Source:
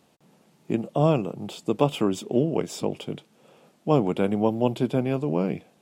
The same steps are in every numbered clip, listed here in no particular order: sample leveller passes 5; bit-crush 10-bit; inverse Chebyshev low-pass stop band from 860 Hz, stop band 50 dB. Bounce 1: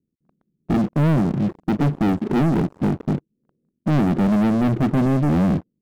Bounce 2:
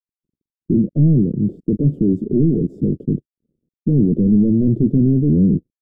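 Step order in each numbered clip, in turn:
bit-crush > inverse Chebyshev low-pass > sample leveller; sample leveller > bit-crush > inverse Chebyshev low-pass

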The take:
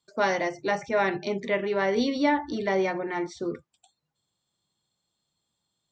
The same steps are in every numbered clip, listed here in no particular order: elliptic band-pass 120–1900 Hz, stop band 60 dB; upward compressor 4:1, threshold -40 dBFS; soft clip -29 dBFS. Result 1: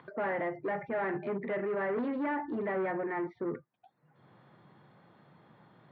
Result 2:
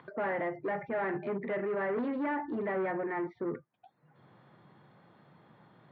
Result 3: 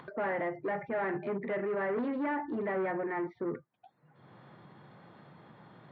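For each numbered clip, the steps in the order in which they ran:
upward compressor > soft clip > elliptic band-pass; soft clip > upward compressor > elliptic band-pass; soft clip > elliptic band-pass > upward compressor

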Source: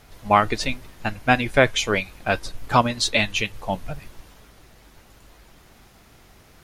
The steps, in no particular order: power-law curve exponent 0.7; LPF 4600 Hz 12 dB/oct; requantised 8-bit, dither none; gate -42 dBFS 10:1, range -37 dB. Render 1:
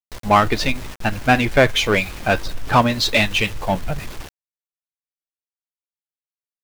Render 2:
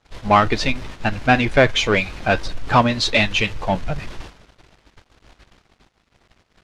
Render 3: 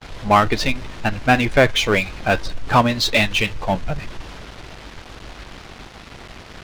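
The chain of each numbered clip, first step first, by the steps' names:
LPF > gate > requantised > power-law curve; requantised > gate > power-law curve > LPF; requantised > LPF > power-law curve > gate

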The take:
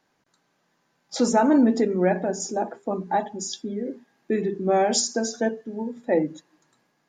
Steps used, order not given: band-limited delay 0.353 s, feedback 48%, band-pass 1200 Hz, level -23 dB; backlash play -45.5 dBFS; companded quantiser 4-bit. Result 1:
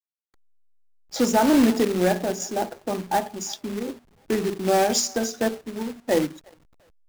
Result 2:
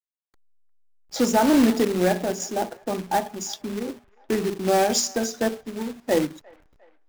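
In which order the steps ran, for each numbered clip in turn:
band-limited delay > companded quantiser > backlash; companded quantiser > backlash > band-limited delay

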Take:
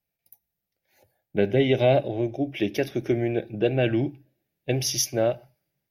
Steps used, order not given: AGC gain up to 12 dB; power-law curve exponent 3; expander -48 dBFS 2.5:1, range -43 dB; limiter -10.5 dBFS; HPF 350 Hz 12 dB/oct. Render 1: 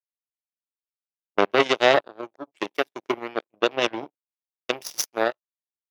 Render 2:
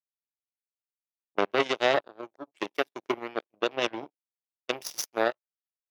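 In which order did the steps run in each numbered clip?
limiter > power-law curve > HPF > AGC > expander; expander > power-law curve > AGC > HPF > limiter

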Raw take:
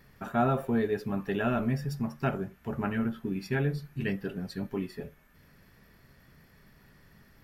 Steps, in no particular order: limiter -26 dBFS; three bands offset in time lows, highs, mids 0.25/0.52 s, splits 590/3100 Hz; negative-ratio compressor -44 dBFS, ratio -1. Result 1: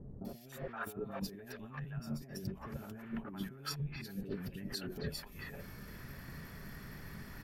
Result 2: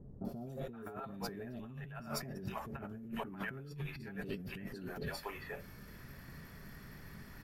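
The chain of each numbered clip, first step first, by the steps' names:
negative-ratio compressor > limiter > three bands offset in time; limiter > three bands offset in time > negative-ratio compressor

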